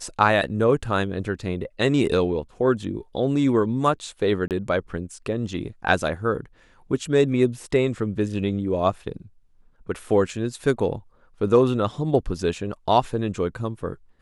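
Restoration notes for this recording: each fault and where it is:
4.48–4.51 s: dropout 28 ms

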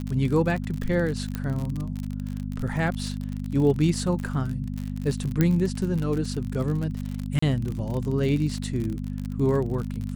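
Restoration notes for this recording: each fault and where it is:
crackle 53 per s -29 dBFS
hum 50 Hz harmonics 5 -31 dBFS
1.35 s: pop -16 dBFS
5.41 s: pop -9 dBFS
7.39–7.42 s: dropout 34 ms

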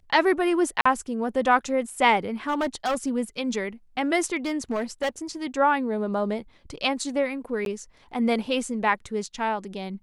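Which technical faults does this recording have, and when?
0.81–0.85 s: dropout 45 ms
2.48–3.09 s: clipped -20.5 dBFS
4.36–5.09 s: clipped -21.5 dBFS
7.65–7.66 s: dropout 12 ms

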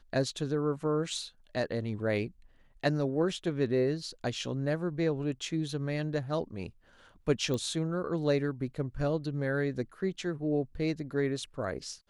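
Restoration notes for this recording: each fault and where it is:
7.54 s: pop -21 dBFS

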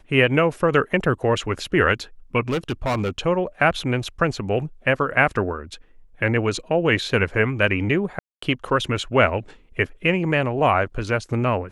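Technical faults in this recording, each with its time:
2.49–3.10 s: clipped -19 dBFS
8.19–8.42 s: dropout 234 ms

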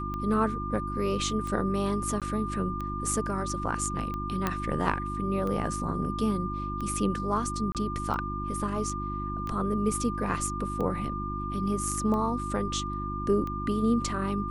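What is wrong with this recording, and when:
hum 50 Hz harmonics 7 -35 dBFS
tick 45 rpm -23 dBFS
whine 1.2 kHz -34 dBFS
2.20–2.22 s: dropout 17 ms
4.47 s: pop -13 dBFS
7.72–7.75 s: dropout 28 ms

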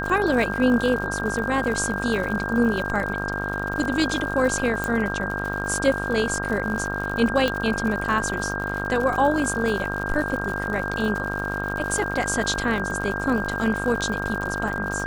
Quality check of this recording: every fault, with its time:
buzz 50 Hz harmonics 32 -30 dBFS
crackle 110 per s -29 dBFS
whine 1.6 kHz -29 dBFS
4.84 s: pop
7.48 s: pop -10 dBFS

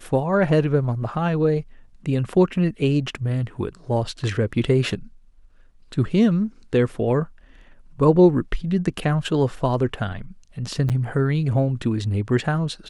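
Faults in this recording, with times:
10.89–10.90 s: dropout 7.9 ms

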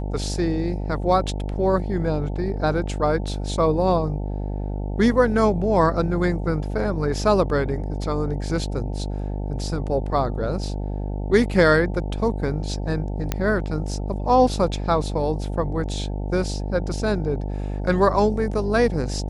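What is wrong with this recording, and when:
buzz 50 Hz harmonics 18 -27 dBFS
13.32 s: pop -8 dBFS

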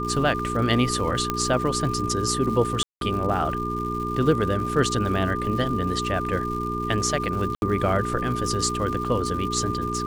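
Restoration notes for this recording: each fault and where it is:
crackle 250 per s -33 dBFS
hum 60 Hz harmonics 7 -30 dBFS
whine 1.2 kHz -28 dBFS
1.30 s: pop -9 dBFS
2.83–3.01 s: dropout 182 ms
7.55–7.62 s: dropout 71 ms

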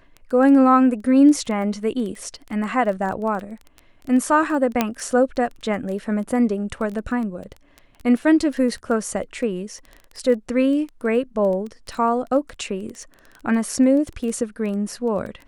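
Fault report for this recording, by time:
crackle 12 per s -28 dBFS
4.81 s: pop -4 dBFS

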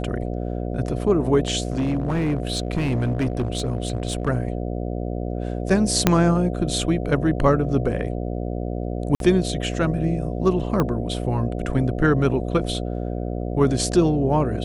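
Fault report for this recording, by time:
buzz 60 Hz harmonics 12 -27 dBFS
1.63–4.29 s: clipped -18 dBFS
6.07 s: pop 0 dBFS
9.15–9.20 s: dropout 52 ms
10.80 s: pop -9 dBFS

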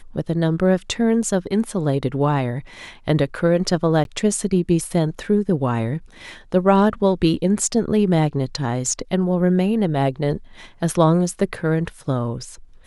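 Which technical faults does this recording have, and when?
4.04–4.05 s: dropout 12 ms

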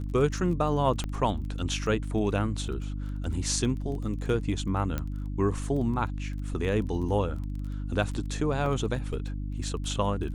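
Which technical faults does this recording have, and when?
crackle 17 per s -36 dBFS
hum 50 Hz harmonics 6 -33 dBFS
1.04 s: pop -19 dBFS
4.98 s: pop -17 dBFS
8.66 s: dropout 2.2 ms

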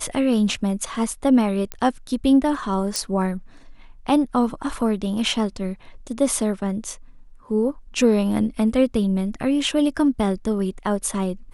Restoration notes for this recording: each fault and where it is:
1.72 s: pop -13 dBFS
2.96 s: pop

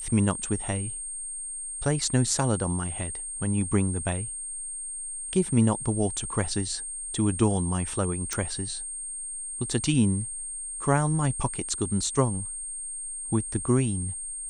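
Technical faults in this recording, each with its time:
whine 8.6 kHz -33 dBFS
8.33 s: pop

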